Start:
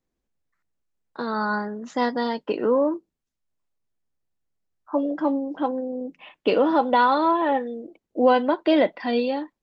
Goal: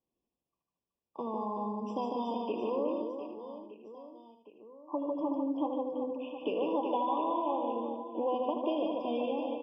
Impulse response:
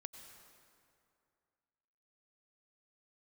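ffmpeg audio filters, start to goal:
-filter_complex "[0:a]asplit=2[a][b];[b]aecho=0:1:77|154|231:0.355|0.0781|0.0172[c];[a][c]amix=inputs=2:normalize=0,acompressor=threshold=-28dB:ratio=3,highpass=f=150:p=1,aemphasis=mode=reproduction:type=50fm,bandreject=f=50:t=h:w=6,bandreject=f=100:t=h:w=6,bandreject=f=150:t=h:w=6,bandreject=f=200:t=h:w=6,bandreject=f=250:t=h:w=6,asplit=2[d][e];[e]aecho=0:1:150|375|712.5|1219|1978:0.631|0.398|0.251|0.158|0.1[f];[d][f]amix=inputs=2:normalize=0,afftfilt=real='re*eq(mod(floor(b*sr/1024/1200),2),0)':imag='im*eq(mod(floor(b*sr/1024/1200),2),0)':win_size=1024:overlap=0.75,volume=-4.5dB"

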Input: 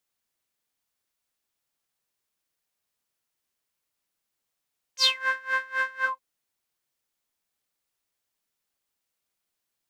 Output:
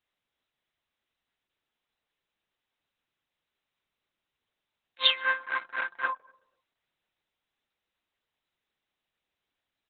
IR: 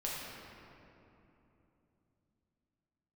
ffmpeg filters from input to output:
-filter_complex "[0:a]asplit=2[a][b];[b]adelay=122,lowpass=f=880:p=1,volume=-20dB,asplit=2[c][d];[d]adelay=122,lowpass=f=880:p=1,volume=0.51,asplit=2[e][f];[f]adelay=122,lowpass=f=880:p=1,volume=0.51,asplit=2[g][h];[h]adelay=122,lowpass=f=880:p=1,volume=0.51[i];[c][e][g][i]amix=inputs=4:normalize=0[j];[a][j]amix=inputs=2:normalize=0" -ar 48000 -c:a libopus -b:a 6k

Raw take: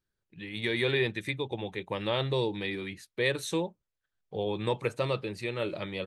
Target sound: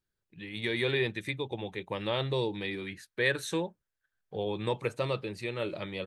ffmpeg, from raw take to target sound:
-filter_complex "[0:a]asettb=1/sr,asplit=3[a][b][c];[a]atrim=end=2.884[d];[b]atrim=start=2.88:end=4.45,asetpts=PTS-STARTPTS,afade=t=in:d=0.004:c=qsin,afade=t=out:st=1.566:d=0.004:c=qsin,equalizer=f=1.6k:t=o:w=0.38:g=10[e];[c]atrim=start=4.446[f];[d][e]acrossfade=d=0.004:c1=hsin:c2=qsin[g];[g][f]acrossfade=d=0.004:c1=qsin:c2=hsin,volume=-1.5dB"

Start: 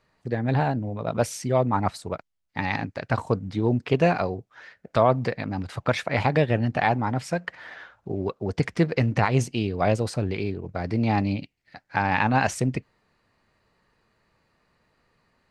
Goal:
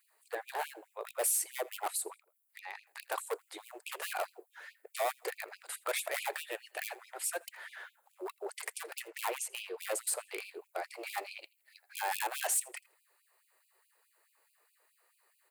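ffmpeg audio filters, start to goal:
-filter_complex "[0:a]highpass=230,asettb=1/sr,asplit=3[a][b][c];[a]atrim=end=2.124[d];[b]atrim=start=2.12:end=2.87,asetpts=PTS-STARTPTS,afade=t=in:d=0.004:c=qsin,afade=t=out:st=0.746:d=0.004:c=qsin,acompressor=threshold=-36dB:ratio=5[e];[c]atrim=start=2.866[f];[d][e]acrossfade=d=0.004:c1=hsin:c2=qsin[g];[g][f]acrossfade=d=0.004:c1=qsin:c2=hsin,asettb=1/sr,asplit=3[h][i][j];[h]atrim=end=6.334[k];[i]atrim=start=6.33:end=7.22,asetpts=PTS-STARTPTS,afade=t=in:d=0.004:c=qsin,afade=t=out:st=0.886:d=0.004:c=qsin,equalizer=f=700:w=0.64:g=-9[l];[j]atrim=start=7.216[m];[k][l]acrossfade=d=0.004:c1=hsin:c2=qsin[n];[n][m]acrossfade=d=0.004:c1=qsin:c2=hsin,asettb=1/sr,asplit=3[o][p][q];[o]atrim=end=9.084[r];[p]atrim=start=9.08:end=9.78,asetpts=PTS-STARTPTS,afade=t=in:d=0.004:c=qsin,afade=t=out:st=0.696:d=0.004:c=qsin,asplit=2[s][t];[t]highpass=f=720:p=1,volume=10dB,asoftclip=type=tanh:threshold=-8dB[u];[s][u]amix=inputs=2:normalize=0,lowpass=f=1.5k:p=1,volume=-6dB[v];[q]atrim=start=9.776[w];[r][v]acrossfade=d=0.004:c1=hsin:c2=qsin[x];[x][w]acrossfade=d=0.004:c1=qsin:c2=hsin,volume=22dB,asoftclip=hard,volume=-22dB,aexciter=amount=13.5:drive=3.4:freq=8.1k,asoftclip=type=tanh:threshold=-21dB,aecho=1:1:82|164:0.0631|0.017,afftfilt=real='re*gte(b*sr/1024,310*pow(2400/310,0.5+0.5*sin(2*PI*4.7*pts/sr)))':imag='im*gte(b*sr/1024,310*pow(2400/310,0.5+0.5*sin(2*PI*4.7*pts/sr)))':win_size=1024:overlap=0.75,volume=-4dB"

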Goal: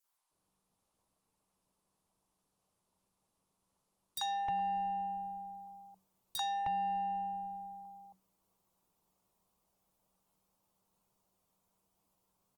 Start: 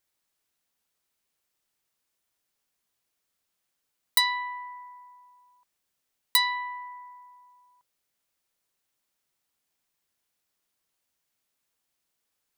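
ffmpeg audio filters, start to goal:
-filter_complex "[0:a]aeval=exprs='if(lt(val(0),0),0.708*val(0),val(0))':c=same,asplit=2[a][b];[b]acompressor=threshold=-40dB:ratio=12,volume=1dB[c];[a][c]amix=inputs=2:normalize=0,highshelf=f=1.5k:t=q:w=3:g=-8,acrossover=split=1100|4600[d][e][f];[e]adelay=40[g];[d]adelay=310[h];[h][g][f]amix=inputs=3:normalize=0,acrossover=split=610|6900[i][j][k];[i]acompressor=threshold=-45dB:ratio=4[l];[j]acompressor=threshold=-32dB:ratio=4[m];[k]acompressor=threshold=-44dB:ratio=4[n];[l][m][n]amix=inputs=3:normalize=0,adynamicequalizer=threshold=0.00224:dfrequency=2100:dqfactor=1.2:tfrequency=2100:tqfactor=1.2:attack=5:release=100:ratio=0.375:range=3.5:mode=cutabove:tftype=bell,asoftclip=type=tanh:threshold=-31dB,afreqshift=-190,volume=2dB" -ar 48000 -c:a libopus -b:a 24k

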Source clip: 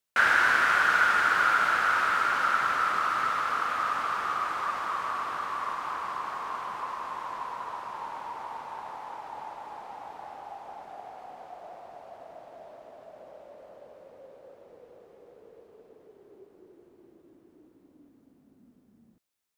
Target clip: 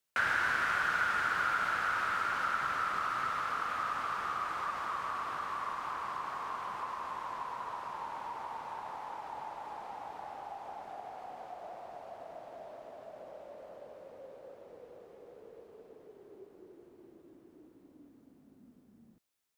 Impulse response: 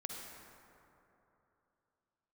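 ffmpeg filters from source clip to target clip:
-filter_complex "[0:a]acrossover=split=170[a][b];[b]acompressor=threshold=-43dB:ratio=1.5[c];[a][c]amix=inputs=2:normalize=0"

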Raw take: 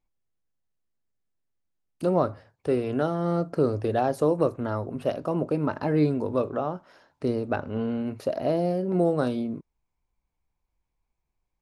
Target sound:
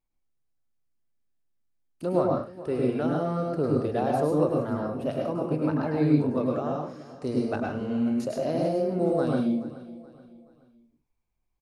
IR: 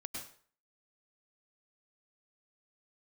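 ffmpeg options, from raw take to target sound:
-filter_complex "[0:a]asettb=1/sr,asplit=3[a][b][c];[a]atrim=end=6.464[d];[b]atrim=start=6.46:end=8.69,asetpts=PTS-STARTPTS,afade=t=in:d=0.004:c=qsin,afade=t=out:st=2.226:d=0.004:c=qsin,equalizer=f=7.1k:w=1.3:g=12.5[e];[c]atrim=start=8.686[f];[d][e]acrossfade=d=0.004:c1=hsin:c2=qsin[g];[g][f]acrossfade=d=0.004:c1=qsin:c2=hsin,aecho=1:1:427|854|1281:0.133|0.052|0.0203[h];[1:a]atrim=start_sample=2205,afade=t=out:st=0.27:d=0.01,atrim=end_sample=12348[i];[h][i]afir=irnorm=-1:irlink=0"

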